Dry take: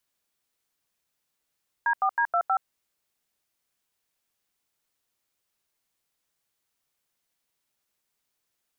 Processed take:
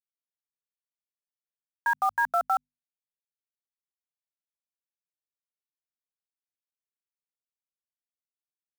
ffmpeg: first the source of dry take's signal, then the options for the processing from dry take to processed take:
-f lavfi -i "aevalsrc='0.0708*clip(min(mod(t,0.159),0.074-mod(t,0.159))/0.002,0,1)*(eq(floor(t/0.159),0)*(sin(2*PI*941*mod(t,0.159))+sin(2*PI*1633*mod(t,0.159)))+eq(floor(t/0.159),1)*(sin(2*PI*770*mod(t,0.159))+sin(2*PI*1209*mod(t,0.159)))+eq(floor(t/0.159),2)*(sin(2*PI*941*mod(t,0.159))+sin(2*PI*1633*mod(t,0.159)))+eq(floor(t/0.159),3)*(sin(2*PI*697*mod(t,0.159))+sin(2*PI*1336*mod(t,0.159)))+eq(floor(t/0.159),4)*(sin(2*PI*770*mod(t,0.159))+sin(2*PI*1336*mod(t,0.159))))':d=0.795:s=44100"
-af "acrusher=bits=6:mix=0:aa=0.000001,bandreject=f=50:t=h:w=6,bandreject=f=100:t=h:w=6,bandreject=f=150:t=h:w=6,bandreject=f=200:t=h:w=6,bandreject=f=250:t=h:w=6"

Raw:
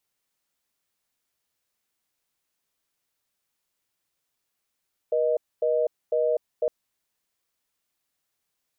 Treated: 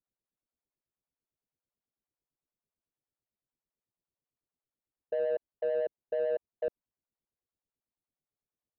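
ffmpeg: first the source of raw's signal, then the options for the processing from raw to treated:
-f lavfi -i "aevalsrc='0.0708*(sin(2*PI*480*t)+sin(2*PI*620*t))*clip(min(mod(t,0.5),0.25-mod(t,0.5))/0.005,0,1)':d=1.56:s=44100"
-filter_complex "[0:a]acrossover=split=570[s0][s1];[s0]aeval=exprs='val(0)*(1-1/2+1/2*cos(2*PI*9*n/s))':c=same[s2];[s1]aeval=exprs='val(0)*(1-1/2-1/2*cos(2*PI*9*n/s))':c=same[s3];[s2][s3]amix=inputs=2:normalize=0,adynamicsmooth=sensitivity=2:basefreq=710"

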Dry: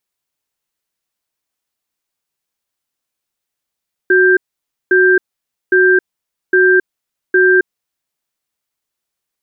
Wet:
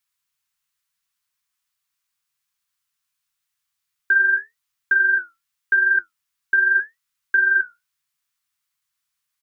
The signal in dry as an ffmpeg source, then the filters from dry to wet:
-f lavfi -i "aevalsrc='0.335*(sin(2*PI*370*t)+sin(2*PI*1580*t))*clip(min(mod(t,0.81),0.27-mod(t,0.81))/0.005,0,1)':d=3.58:s=44100"
-af "flanger=delay=9:depth=8.7:regen=-55:speed=0.84:shape=triangular,acompressor=threshold=0.141:ratio=4,firequalizer=gain_entry='entry(170,0);entry(290,-27);entry(590,-12);entry(1100,5)':delay=0.05:min_phase=1"

